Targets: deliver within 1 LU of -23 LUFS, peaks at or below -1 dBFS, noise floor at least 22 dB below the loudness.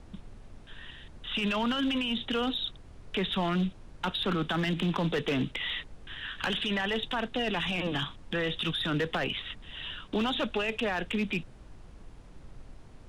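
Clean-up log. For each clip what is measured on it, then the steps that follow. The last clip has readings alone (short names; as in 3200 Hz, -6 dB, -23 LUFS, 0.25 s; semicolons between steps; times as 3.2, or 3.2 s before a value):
clipped 1.2%; flat tops at -23.0 dBFS; noise floor -51 dBFS; noise floor target -53 dBFS; loudness -31.0 LUFS; peak -23.0 dBFS; loudness target -23.0 LUFS
-> clip repair -23 dBFS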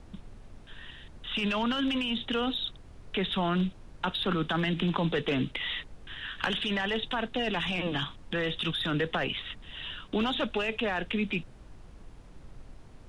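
clipped 0.0%; noise floor -51 dBFS; noise floor target -53 dBFS
-> noise print and reduce 6 dB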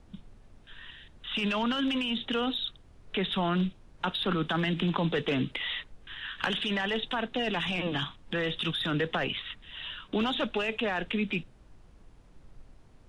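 noise floor -56 dBFS; loudness -30.5 LUFS; peak -14.0 dBFS; loudness target -23.0 LUFS
-> gain +7.5 dB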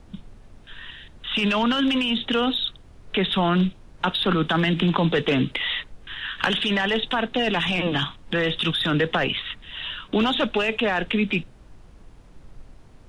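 loudness -23.0 LUFS; peak -6.5 dBFS; noise floor -49 dBFS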